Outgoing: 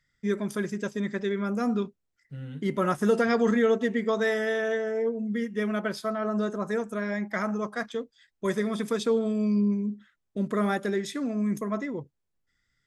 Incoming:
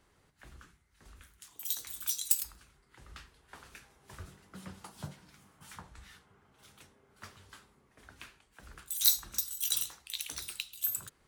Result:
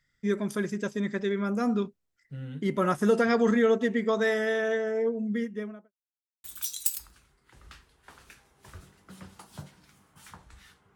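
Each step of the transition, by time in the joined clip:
outgoing
5.30–5.92 s: studio fade out
5.92–6.44 s: mute
6.44 s: go over to incoming from 1.89 s

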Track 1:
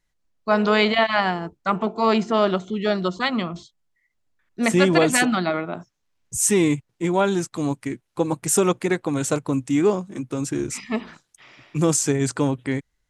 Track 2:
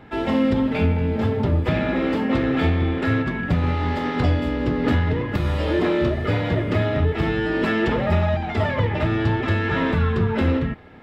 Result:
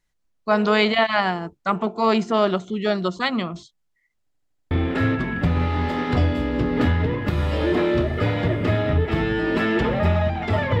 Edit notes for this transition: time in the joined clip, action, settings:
track 1
4.23 s: stutter in place 0.08 s, 6 plays
4.71 s: go over to track 2 from 2.78 s

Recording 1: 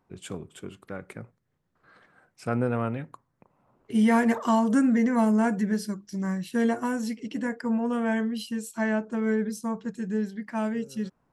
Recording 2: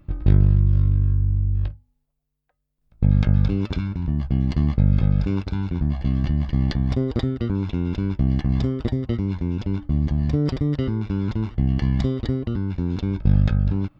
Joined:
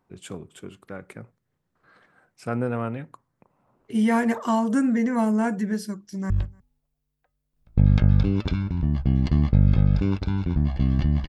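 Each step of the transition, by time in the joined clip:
recording 1
6.01–6.30 s: echo throw 150 ms, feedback 25%, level -16.5 dB
6.30 s: go over to recording 2 from 1.55 s

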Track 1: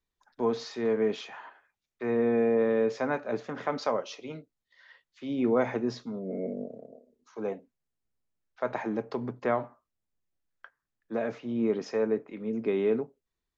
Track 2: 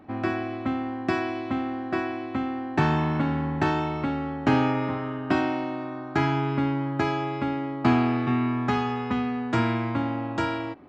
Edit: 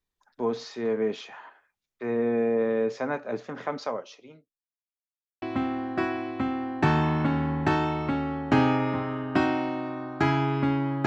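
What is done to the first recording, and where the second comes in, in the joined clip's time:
track 1
3.65–4.62 s: fade out linear
4.62–5.42 s: mute
5.42 s: go over to track 2 from 1.37 s

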